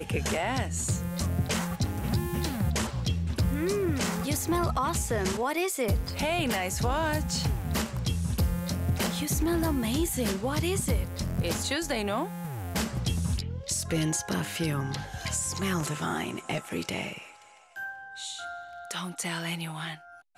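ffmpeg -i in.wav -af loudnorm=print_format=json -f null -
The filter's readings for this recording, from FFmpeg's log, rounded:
"input_i" : "-30.1",
"input_tp" : "-17.6",
"input_lra" : "8.0",
"input_thresh" : "-40.4",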